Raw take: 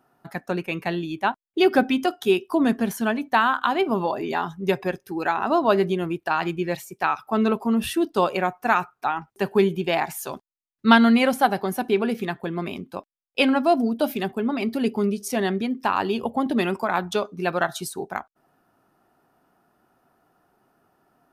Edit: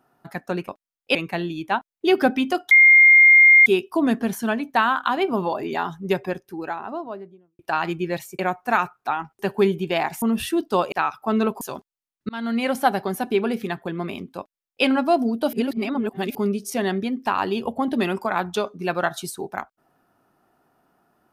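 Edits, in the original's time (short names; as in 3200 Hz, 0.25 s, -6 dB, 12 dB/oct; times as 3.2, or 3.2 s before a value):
2.24 add tone 2120 Hz -8 dBFS 0.95 s
4.57–6.17 studio fade out
6.97–7.66 swap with 8.36–10.19
10.87–11.43 fade in
12.96–13.43 copy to 0.68
14.11–14.93 reverse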